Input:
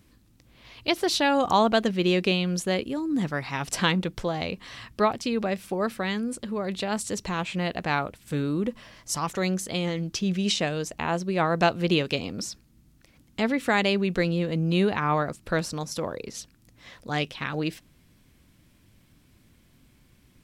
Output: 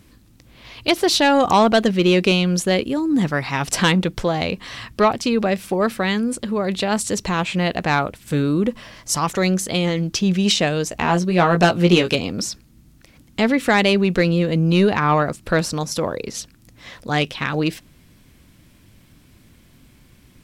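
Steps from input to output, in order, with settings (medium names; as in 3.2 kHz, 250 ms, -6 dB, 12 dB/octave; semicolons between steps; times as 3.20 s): in parallel at -6 dB: sine folder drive 6 dB, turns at -8 dBFS; 10.90–12.15 s: on the sum: doubling 17 ms -5 dB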